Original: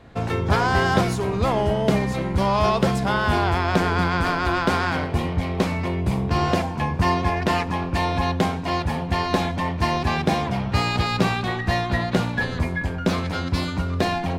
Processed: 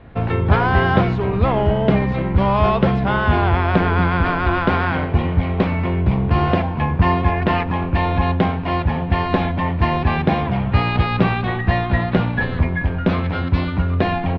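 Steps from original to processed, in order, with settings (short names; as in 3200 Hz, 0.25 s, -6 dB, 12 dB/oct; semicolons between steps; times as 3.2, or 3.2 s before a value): LPF 3200 Hz 24 dB/oct; low shelf 120 Hz +6.5 dB; feedback echo 1.049 s, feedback 59%, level -24 dB; gain +2.5 dB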